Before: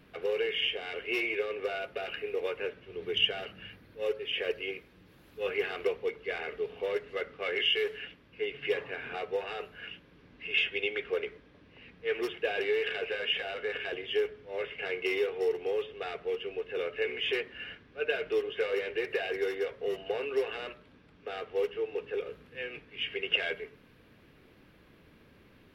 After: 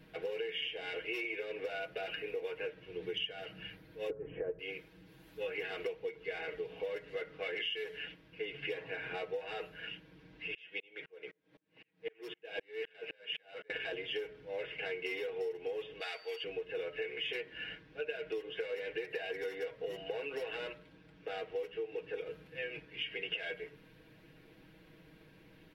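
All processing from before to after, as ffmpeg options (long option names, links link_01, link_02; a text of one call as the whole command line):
ffmpeg -i in.wav -filter_complex "[0:a]asettb=1/sr,asplit=3[link_01][link_02][link_03];[link_01]atrim=end=4.104[link_04];[link_02]atrim=start=4.1:end=4.59,asetpts=PTS-STARTPTS,afade=type=in:duration=0.004:curve=qsin,afade=type=out:start_time=0.486:duration=0.004:curve=qsin,lowpass=frequency=1300:width=0.5412,lowpass=frequency=1300:width=1.3066,lowshelf=frequency=390:gain=11.5[link_05];[link_03]atrim=start=4.586[link_06];[link_04][link_05]acrossfade=duration=0.004:curve1=hsin:curve2=qsin[link_07];[link_07][link_06]acrossfade=duration=0.004:curve1=qsin:curve2=hsin,asettb=1/sr,asplit=3[link_08][link_09][link_10];[link_08]atrim=end=10.544[link_11];[link_09]atrim=start=10.54:end=13.7,asetpts=PTS-STARTPTS,afade=type=in:duration=0.004:curve=qsin,afade=type=out:start_time=3.156:duration=0.004:curve=qsin,highpass=150,aeval=exprs='val(0)*pow(10,-38*if(lt(mod(-3.9*n/s,1),2*abs(-3.9)/1000),1-mod(-3.9*n/s,1)/(2*abs(-3.9)/1000),(mod(-3.9*n/s,1)-2*abs(-3.9)/1000)/(1-2*abs(-3.9)/1000))/20)':channel_layout=same[link_12];[link_10]atrim=start=13.696[link_13];[link_11][link_12]acrossfade=duration=0.004:curve1=hsin:curve2=qsin[link_14];[link_14][link_13]acrossfade=duration=0.004:curve1=qsin:curve2=hsin,asettb=1/sr,asplit=3[link_15][link_16][link_17];[link_15]atrim=end=16.004[link_18];[link_16]atrim=start=16:end=16.44,asetpts=PTS-STARTPTS,afade=type=in:duration=0.004:curve=qsin,afade=type=out:start_time=0.436:duration=0.004:curve=qsin,highpass=760,highshelf=frequency=4700:gain=10,aeval=exprs='val(0)+0.00126*sin(2*PI*4600*n/s)':channel_layout=same[link_19];[link_17]atrim=start=16.436[link_20];[link_18][link_19]acrossfade=duration=0.004:curve1=hsin:curve2=qsin[link_21];[link_21][link_20]acrossfade=duration=0.004:curve1=qsin:curve2=hsin,bandreject=frequency=1200:width=5.3,aecho=1:1:6.3:0.77,acompressor=threshold=-33dB:ratio=6,volume=-2.5dB" out.wav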